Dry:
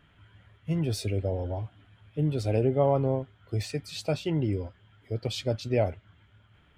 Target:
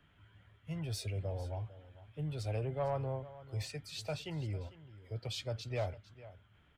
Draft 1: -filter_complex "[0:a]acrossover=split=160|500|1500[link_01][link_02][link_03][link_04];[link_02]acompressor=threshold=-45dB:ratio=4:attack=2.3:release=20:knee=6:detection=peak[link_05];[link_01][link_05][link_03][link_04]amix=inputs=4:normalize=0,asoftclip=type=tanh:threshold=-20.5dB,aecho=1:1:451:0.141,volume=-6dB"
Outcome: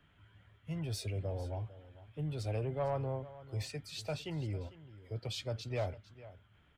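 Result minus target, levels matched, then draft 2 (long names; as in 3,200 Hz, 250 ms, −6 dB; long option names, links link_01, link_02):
downward compressor: peak gain reduction −8.5 dB
-filter_complex "[0:a]acrossover=split=160|500|1500[link_01][link_02][link_03][link_04];[link_02]acompressor=threshold=-56.5dB:ratio=4:attack=2.3:release=20:knee=6:detection=peak[link_05];[link_01][link_05][link_03][link_04]amix=inputs=4:normalize=0,asoftclip=type=tanh:threshold=-20.5dB,aecho=1:1:451:0.141,volume=-6dB"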